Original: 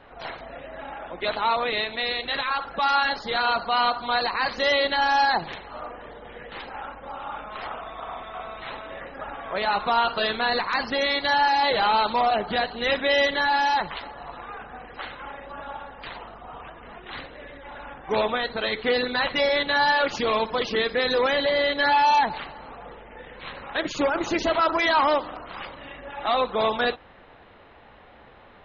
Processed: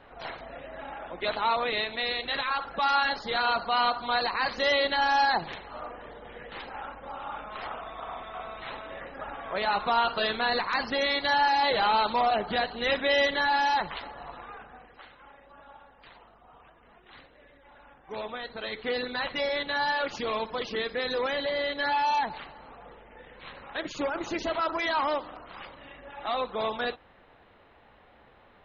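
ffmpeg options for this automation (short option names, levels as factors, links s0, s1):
-af "volume=1.68,afade=t=out:st=14.2:d=0.83:silence=0.266073,afade=t=in:st=18.06:d=0.93:silence=0.421697"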